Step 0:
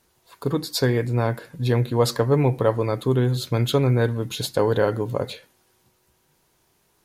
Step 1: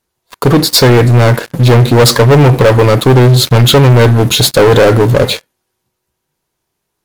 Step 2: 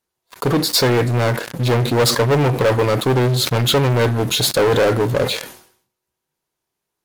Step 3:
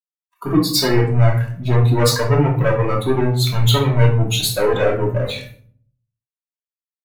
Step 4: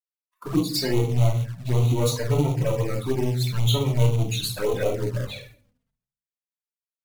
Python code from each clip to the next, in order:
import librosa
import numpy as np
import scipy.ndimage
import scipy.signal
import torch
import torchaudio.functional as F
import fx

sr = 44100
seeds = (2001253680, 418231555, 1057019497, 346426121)

y1 = fx.leveller(x, sr, passes=5)
y1 = F.gain(torch.from_numpy(y1), 3.5).numpy()
y2 = fx.low_shelf(y1, sr, hz=160.0, db=-6.5)
y2 = fx.sustainer(y2, sr, db_per_s=98.0)
y2 = F.gain(torch.from_numpy(y2), -8.0).numpy()
y3 = fx.bin_expand(y2, sr, power=2.0)
y3 = fx.room_shoebox(y3, sr, seeds[0], volume_m3=580.0, walls='furnished', distance_m=2.8)
y3 = F.gain(torch.from_numpy(y3), -1.0).numpy()
y4 = fx.quant_float(y3, sr, bits=2)
y4 = fx.env_flanger(y4, sr, rest_ms=4.7, full_db=-12.0)
y4 = F.gain(torch.from_numpy(y4), -6.0).numpy()